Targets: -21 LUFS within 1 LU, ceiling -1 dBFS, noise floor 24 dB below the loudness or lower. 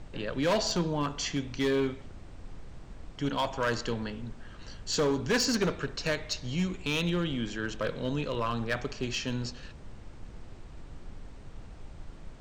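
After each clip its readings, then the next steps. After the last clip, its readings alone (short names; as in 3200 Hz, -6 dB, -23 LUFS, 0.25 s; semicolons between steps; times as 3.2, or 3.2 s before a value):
clipped 1.4%; flat tops at -22.0 dBFS; noise floor -47 dBFS; noise floor target -55 dBFS; loudness -31.0 LUFS; peak -22.0 dBFS; loudness target -21.0 LUFS
-> clip repair -22 dBFS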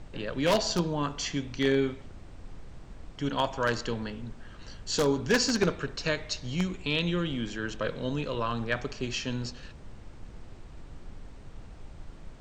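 clipped 0.0%; noise floor -47 dBFS; noise floor target -54 dBFS
-> noise print and reduce 7 dB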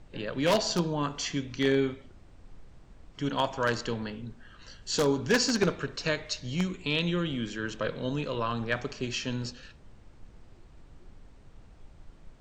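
noise floor -54 dBFS; loudness -30.0 LUFS; peak -12.5 dBFS; loudness target -21.0 LUFS
-> gain +9 dB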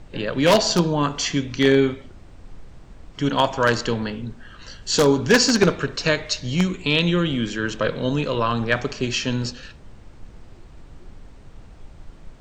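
loudness -21.0 LUFS; peak -3.5 dBFS; noise floor -45 dBFS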